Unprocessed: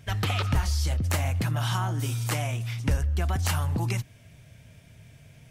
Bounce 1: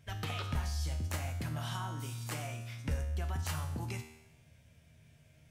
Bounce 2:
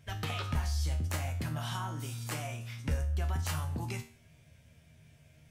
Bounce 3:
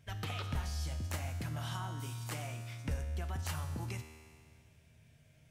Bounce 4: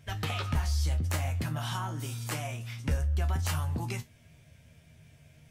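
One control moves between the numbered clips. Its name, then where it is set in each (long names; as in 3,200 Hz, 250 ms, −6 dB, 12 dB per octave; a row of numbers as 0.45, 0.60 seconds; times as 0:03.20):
tuned comb filter, decay: 0.92, 0.43, 2.1, 0.19 seconds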